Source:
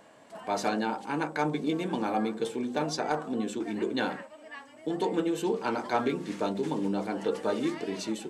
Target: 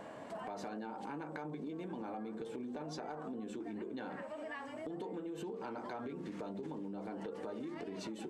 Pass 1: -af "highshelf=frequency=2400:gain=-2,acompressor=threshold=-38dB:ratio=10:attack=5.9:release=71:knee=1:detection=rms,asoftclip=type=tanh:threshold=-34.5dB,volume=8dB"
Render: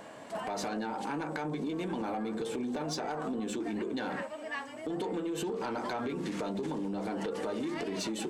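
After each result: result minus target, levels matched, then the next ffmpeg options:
downward compressor: peak gain reduction −9 dB; 4,000 Hz band +4.5 dB
-af "highshelf=frequency=2400:gain=-2,acompressor=threshold=-48.5dB:ratio=10:attack=5.9:release=71:knee=1:detection=rms,asoftclip=type=tanh:threshold=-34.5dB,volume=8dB"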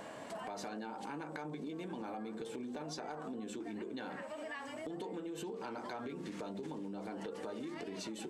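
4,000 Hz band +4.5 dB
-af "highshelf=frequency=2400:gain=-11.5,acompressor=threshold=-48.5dB:ratio=10:attack=5.9:release=71:knee=1:detection=rms,asoftclip=type=tanh:threshold=-34.5dB,volume=8dB"

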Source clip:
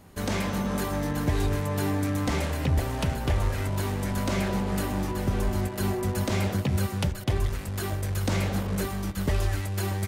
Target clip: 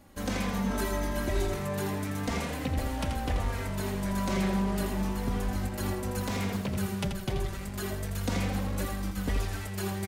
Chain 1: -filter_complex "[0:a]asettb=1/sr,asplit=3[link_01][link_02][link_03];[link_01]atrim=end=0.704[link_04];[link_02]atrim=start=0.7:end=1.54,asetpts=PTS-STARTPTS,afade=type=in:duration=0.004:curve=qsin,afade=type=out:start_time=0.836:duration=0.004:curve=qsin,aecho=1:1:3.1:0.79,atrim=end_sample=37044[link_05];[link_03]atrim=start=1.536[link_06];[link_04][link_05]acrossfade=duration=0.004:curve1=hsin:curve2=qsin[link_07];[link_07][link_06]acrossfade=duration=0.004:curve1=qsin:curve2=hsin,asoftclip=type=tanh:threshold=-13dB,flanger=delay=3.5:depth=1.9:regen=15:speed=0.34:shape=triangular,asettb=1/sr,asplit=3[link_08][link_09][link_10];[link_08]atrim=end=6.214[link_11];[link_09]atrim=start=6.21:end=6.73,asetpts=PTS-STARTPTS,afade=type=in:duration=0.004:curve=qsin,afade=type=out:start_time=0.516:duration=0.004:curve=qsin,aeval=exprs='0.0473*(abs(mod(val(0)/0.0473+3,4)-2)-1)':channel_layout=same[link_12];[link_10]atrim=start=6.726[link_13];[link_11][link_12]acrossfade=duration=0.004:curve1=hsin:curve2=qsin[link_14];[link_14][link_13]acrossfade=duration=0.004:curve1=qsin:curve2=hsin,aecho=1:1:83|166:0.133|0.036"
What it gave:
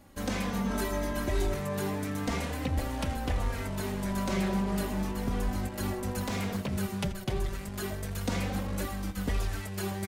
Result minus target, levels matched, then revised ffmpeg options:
echo-to-direct −10.5 dB
-filter_complex "[0:a]asettb=1/sr,asplit=3[link_01][link_02][link_03];[link_01]atrim=end=0.704[link_04];[link_02]atrim=start=0.7:end=1.54,asetpts=PTS-STARTPTS,afade=type=in:duration=0.004:curve=qsin,afade=type=out:start_time=0.836:duration=0.004:curve=qsin,aecho=1:1:3.1:0.79,atrim=end_sample=37044[link_05];[link_03]atrim=start=1.536[link_06];[link_04][link_05]acrossfade=duration=0.004:curve1=hsin:curve2=qsin[link_07];[link_07][link_06]acrossfade=duration=0.004:curve1=qsin:curve2=hsin,asoftclip=type=tanh:threshold=-13dB,flanger=delay=3.5:depth=1.9:regen=15:speed=0.34:shape=triangular,asettb=1/sr,asplit=3[link_08][link_09][link_10];[link_08]atrim=end=6.214[link_11];[link_09]atrim=start=6.21:end=6.73,asetpts=PTS-STARTPTS,afade=type=in:duration=0.004:curve=qsin,afade=type=out:start_time=0.516:duration=0.004:curve=qsin,aeval=exprs='0.0473*(abs(mod(val(0)/0.0473+3,4)-2)-1)':channel_layout=same[link_12];[link_10]atrim=start=6.726[link_13];[link_11][link_12]acrossfade=duration=0.004:curve1=hsin:curve2=qsin[link_14];[link_14][link_13]acrossfade=duration=0.004:curve1=qsin:curve2=hsin,aecho=1:1:83|166|249:0.447|0.121|0.0326"

